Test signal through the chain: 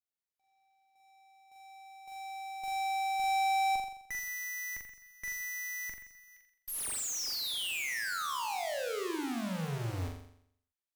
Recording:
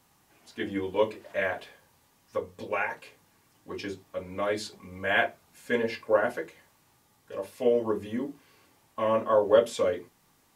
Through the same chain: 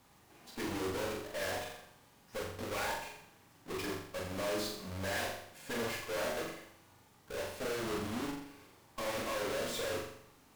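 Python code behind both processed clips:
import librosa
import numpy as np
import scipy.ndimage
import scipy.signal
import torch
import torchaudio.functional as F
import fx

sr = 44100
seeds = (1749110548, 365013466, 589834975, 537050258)

y = fx.halfwave_hold(x, sr)
y = fx.tube_stage(y, sr, drive_db=35.0, bias=0.6)
y = fx.room_flutter(y, sr, wall_m=7.3, rt60_s=0.67)
y = F.gain(torch.from_numpy(y), -2.0).numpy()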